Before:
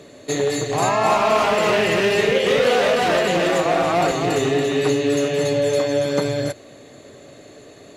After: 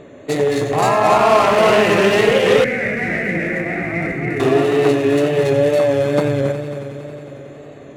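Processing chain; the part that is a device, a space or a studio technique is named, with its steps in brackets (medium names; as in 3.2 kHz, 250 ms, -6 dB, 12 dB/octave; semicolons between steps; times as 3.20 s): local Wiener filter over 9 samples; multi-head tape echo (multi-head delay 91 ms, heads first and third, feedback 70%, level -12 dB; wow and flutter); 2.64–4.40 s: FFT filter 200 Hz 0 dB, 1.1 kHz -21 dB, 2.1 kHz +7 dB, 3.1 kHz -21 dB, 5.7 kHz -15 dB; trim +4 dB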